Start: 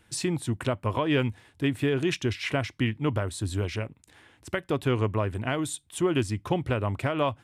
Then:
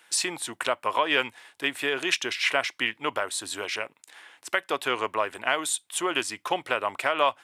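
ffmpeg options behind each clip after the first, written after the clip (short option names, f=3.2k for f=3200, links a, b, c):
-af "highpass=760,volume=7.5dB"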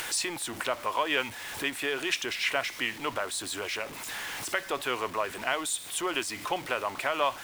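-af "aeval=exprs='val(0)+0.5*0.0237*sgn(val(0))':c=same,acompressor=mode=upward:threshold=-27dB:ratio=2.5,volume=-5dB"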